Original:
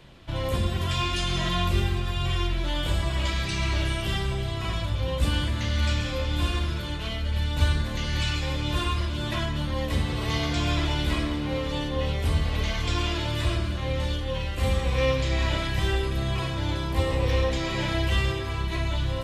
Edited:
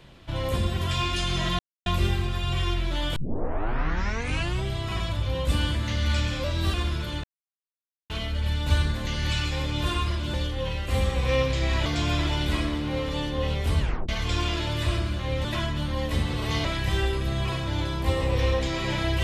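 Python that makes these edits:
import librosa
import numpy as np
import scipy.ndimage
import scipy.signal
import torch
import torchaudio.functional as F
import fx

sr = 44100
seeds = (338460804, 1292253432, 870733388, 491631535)

y = fx.edit(x, sr, fx.insert_silence(at_s=1.59, length_s=0.27),
    fx.tape_start(start_s=2.89, length_s=1.48),
    fx.speed_span(start_s=6.17, length_s=0.33, speed=1.11),
    fx.insert_silence(at_s=7.0, length_s=0.86),
    fx.swap(start_s=9.24, length_s=1.2, other_s=14.03, other_length_s=1.52),
    fx.tape_stop(start_s=12.38, length_s=0.29), tone=tone)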